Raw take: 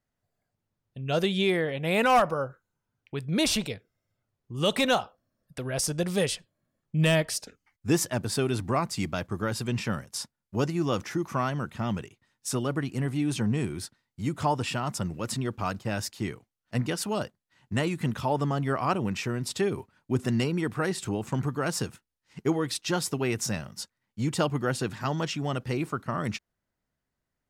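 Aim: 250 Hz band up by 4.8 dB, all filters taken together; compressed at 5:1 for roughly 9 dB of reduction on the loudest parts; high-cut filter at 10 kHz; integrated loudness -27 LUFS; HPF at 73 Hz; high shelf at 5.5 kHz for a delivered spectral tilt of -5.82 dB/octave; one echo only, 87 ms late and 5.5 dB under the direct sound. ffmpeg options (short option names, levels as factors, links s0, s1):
-af "highpass=73,lowpass=10000,equalizer=f=250:t=o:g=6.5,highshelf=f=5500:g=-7.5,acompressor=threshold=0.0501:ratio=5,aecho=1:1:87:0.531,volume=1.58"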